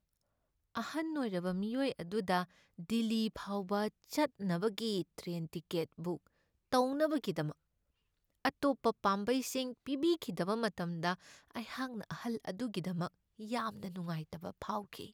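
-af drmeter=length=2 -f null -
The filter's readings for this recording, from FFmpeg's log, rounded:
Channel 1: DR: 14.6
Overall DR: 14.6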